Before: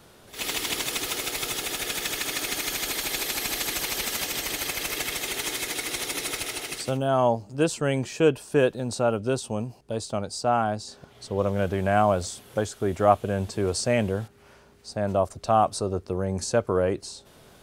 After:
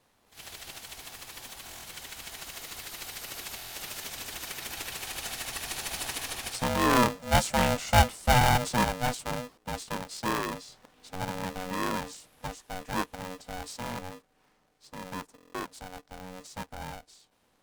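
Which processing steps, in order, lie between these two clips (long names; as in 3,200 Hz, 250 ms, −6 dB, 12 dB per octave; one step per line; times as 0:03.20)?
source passing by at 0:07.62, 14 m/s, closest 18 metres
buffer that repeats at 0:01.65/0:03.56/0:08.39/0:13.80/0:15.36, samples 1,024, times 7
ring modulator with a square carrier 370 Hz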